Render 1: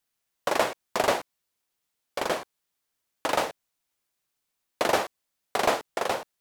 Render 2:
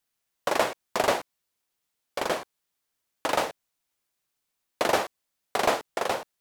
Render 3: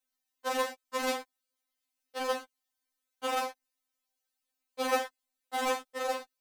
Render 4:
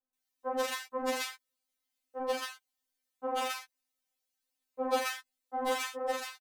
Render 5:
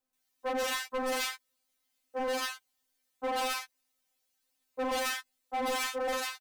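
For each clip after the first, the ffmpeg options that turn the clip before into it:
ffmpeg -i in.wav -af anull out.wav
ffmpeg -i in.wav -af "afftfilt=real='re*3.46*eq(mod(b,12),0)':imag='im*3.46*eq(mod(b,12),0)':win_size=2048:overlap=0.75,volume=-3dB" out.wav
ffmpeg -i in.wav -filter_complex "[0:a]acrossover=split=1200[link_01][link_02];[link_02]adelay=130[link_03];[link_01][link_03]amix=inputs=2:normalize=0" out.wav
ffmpeg -i in.wav -af "volume=36dB,asoftclip=hard,volume=-36dB,volume=6.5dB" out.wav

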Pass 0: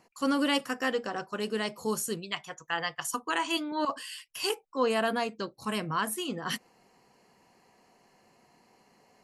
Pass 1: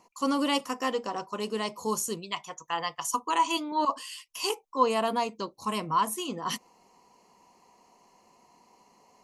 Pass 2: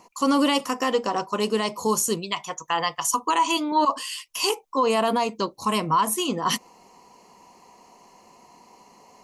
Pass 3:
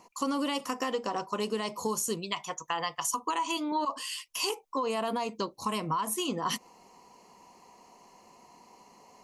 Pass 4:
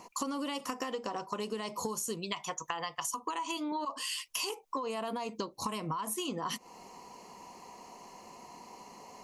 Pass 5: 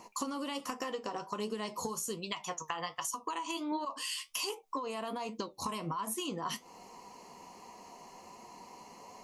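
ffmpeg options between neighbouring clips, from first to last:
ffmpeg -i in.wav -af "equalizer=frequency=125:width_type=o:width=0.33:gain=-11,equalizer=frequency=1000:width_type=o:width=0.33:gain=10,equalizer=frequency=1600:width_type=o:width=0.33:gain=-12,equalizer=frequency=6300:width_type=o:width=0.33:gain=7" out.wav
ffmpeg -i in.wav -af "alimiter=limit=-20.5dB:level=0:latency=1:release=79,volume=8.5dB" out.wav
ffmpeg -i in.wav -af "acompressor=threshold=-23dB:ratio=6,volume=-4dB" out.wav
ffmpeg -i in.wav -af "acompressor=threshold=-38dB:ratio=10,volume=5.5dB" out.wav
ffmpeg -i in.wav -af "flanger=delay=8.4:depth=4.8:regen=63:speed=1.3:shape=triangular,volume=3dB" out.wav

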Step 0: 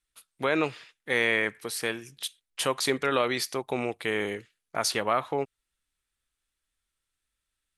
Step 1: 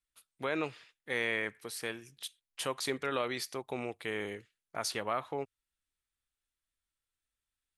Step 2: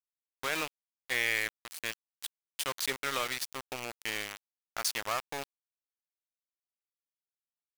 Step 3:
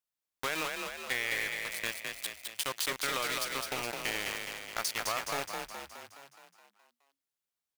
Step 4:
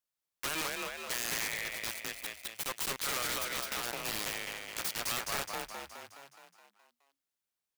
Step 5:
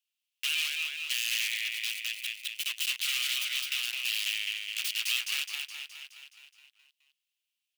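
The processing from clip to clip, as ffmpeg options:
ffmpeg -i in.wav -af "equalizer=frequency=91:width_type=o:width=0.43:gain=4,volume=-8dB" out.wav
ffmpeg -i in.wav -af "aeval=exprs='val(0)*gte(abs(val(0)),0.0211)':channel_layout=same,tiltshelf=frequency=860:gain=-6" out.wav
ffmpeg -i in.wav -filter_complex "[0:a]acompressor=threshold=-32dB:ratio=6,asplit=2[link_01][link_02];[link_02]asplit=8[link_03][link_04][link_05][link_06][link_07][link_08][link_09][link_10];[link_03]adelay=210,afreqshift=34,volume=-4dB[link_11];[link_04]adelay=420,afreqshift=68,volume=-8.7dB[link_12];[link_05]adelay=630,afreqshift=102,volume=-13.5dB[link_13];[link_06]adelay=840,afreqshift=136,volume=-18.2dB[link_14];[link_07]adelay=1050,afreqshift=170,volume=-22.9dB[link_15];[link_08]adelay=1260,afreqshift=204,volume=-27.7dB[link_16];[link_09]adelay=1470,afreqshift=238,volume=-32.4dB[link_17];[link_10]adelay=1680,afreqshift=272,volume=-37.1dB[link_18];[link_11][link_12][link_13][link_14][link_15][link_16][link_17][link_18]amix=inputs=8:normalize=0[link_19];[link_01][link_19]amix=inputs=2:normalize=0,volume=3dB" out.wav
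ffmpeg -i in.wav -af "aeval=exprs='(mod(20*val(0)+1,2)-1)/20':channel_layout=same" out.wav
ffmpeg -i in.wav -af "highpass=frequency=2800:width_type=q:width=5.1" out.wav

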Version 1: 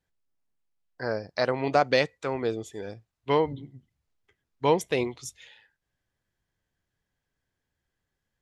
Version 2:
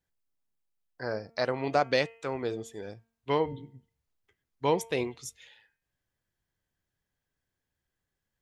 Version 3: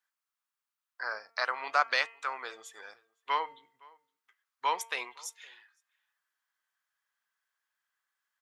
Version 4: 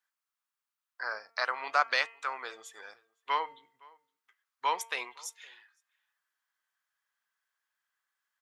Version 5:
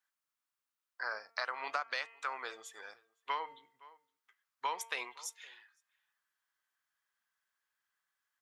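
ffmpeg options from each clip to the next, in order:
ffmpeg -i in.wav -af "highshelf=frequency=11000:gain=6,bandreject=frequency=228.2:width_type=h:width=4,bandreject=frequency=456.4:width_type=h:width=4,bandreject=frequency=684.6:width_type=h:width=4,bandreject=frequency=912.8:width_type=h:width=4,bandreject=frequency=1141:width_type=h:width=4,bandreject=frequency=1369.2:width_type=h:width=4,bandreject=frequency=1597.4:width_type=h:width=4,bandreject=frequency=1825.6:width_type=h:width=4,bandreject=frequency=2053.8:width_type=h:width=4,bandreject=frequency=2282:width_type=h:width=4,bandreject=frequency=2510.2:width_type=h:width=4,bandreject=frequency=2738.4:width_type=h:width=4,bandreject=frequency=2966.6:width_type=h:width=4,bandreject=frequency=3194.8:width_type=h:width=4,volume=-3.5dB" out.wav
ffmpeg -i in.wav -filter_complex "[0:a]highpass=frequency=1200:width_type=q:width=2.6,asplit=2[link_01][link_02];[link_02]adelay=513.1,volume=-25dB,highshelf=frequency=4000:gain=-11.5[link_03];[link_01][link_03]amix=inputs=2:normalize=0" out.wav
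ffmpeg -i in.wav -af anull out.wav
ffmpeg -i in.wav -af "acompressor=threshold=-30dB:ratio=12,volume=-1.5dB" out.wav

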